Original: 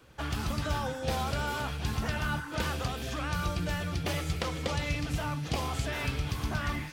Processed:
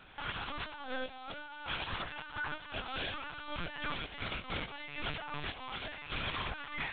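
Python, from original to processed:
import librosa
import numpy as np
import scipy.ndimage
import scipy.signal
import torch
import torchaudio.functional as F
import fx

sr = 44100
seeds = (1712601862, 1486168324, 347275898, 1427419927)

y = fx.highpass(x, sr, hz=1100.0, slope=6)
y = fx.over_compress(y, sr, threshold_db=-43.0, ratio=-0.5)
y = fx.quant_companded(y, sr, bits=8)
y = fx.echo_feedback(y, sr, ms=371, feedback_pct=37, wet_db=-14.5)
y = fx.lpc_vocoder(y, sr, seeds[0], excitation='pitch_kept', order=10)
y = y * 10.0 ** (4.0 / 20.0)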